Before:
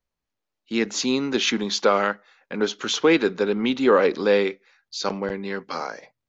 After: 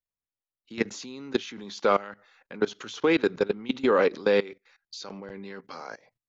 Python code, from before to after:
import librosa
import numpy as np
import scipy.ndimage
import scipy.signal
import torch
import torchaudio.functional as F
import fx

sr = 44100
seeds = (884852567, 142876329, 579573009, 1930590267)

y = fx.peak_eq(x, sr, hz=110.0, db=9.0, octaves=0.27)
y = fx.level_steps(y, sr, step_db=20)